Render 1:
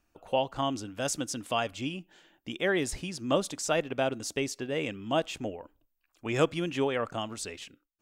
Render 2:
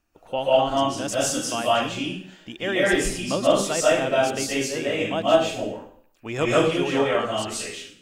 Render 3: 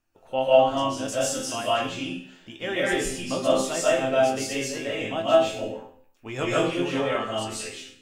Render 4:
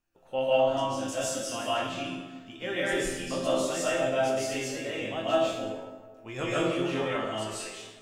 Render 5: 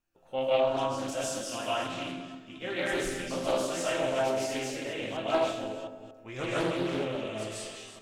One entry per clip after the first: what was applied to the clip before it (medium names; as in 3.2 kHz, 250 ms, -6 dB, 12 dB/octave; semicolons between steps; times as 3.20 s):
reverberation RT60 0.55 s, pre-delay 105 ms, DRR -8 dB
chord resonator F2 major, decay 0.26 s; trim +8 dB
plate-style reverb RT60 1.5 s, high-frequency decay 0.6×, DRR 3 dB; trim -5.5 dB
chunks repeated in reverse 235 ms, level -12 dB; spectral replace 6.93–7.71 s, 670–3600 Hz both; loudspeaker Doppler distortion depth 0.39 ms; trim -2 dB